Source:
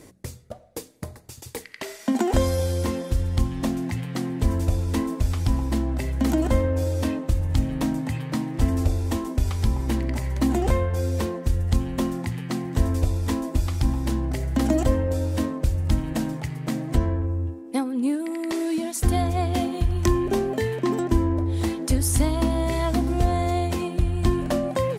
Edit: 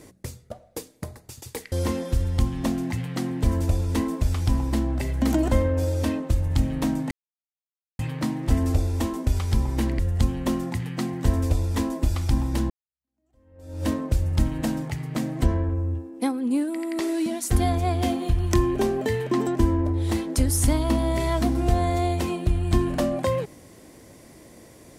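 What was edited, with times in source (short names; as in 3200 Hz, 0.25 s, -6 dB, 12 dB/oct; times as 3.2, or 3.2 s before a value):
1.72–2.71 cut
8.1 insert silence 0.88 s
10.1–11.51 cut
14.22–15.38 fade in exponential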